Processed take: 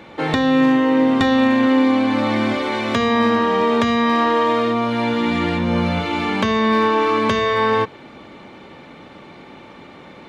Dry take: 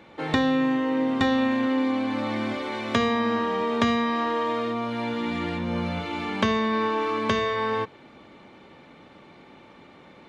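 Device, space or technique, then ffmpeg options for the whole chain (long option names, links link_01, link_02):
limiter into clipper: -af "alimiter=limit=-15dB:level=0:latency=1:release=294,asoftclip=type=hard:threshold=-17dB,volume=9dB"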